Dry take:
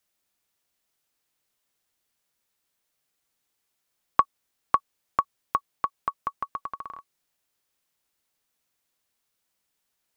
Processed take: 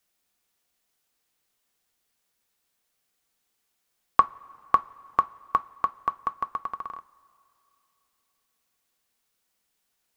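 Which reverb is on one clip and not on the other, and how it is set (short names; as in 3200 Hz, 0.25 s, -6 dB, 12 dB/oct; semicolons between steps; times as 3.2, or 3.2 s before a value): two-slope reverb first 0.2 s, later 2.9 s, from -21 dB, DRR 11.5 dB; gain +1.5 dB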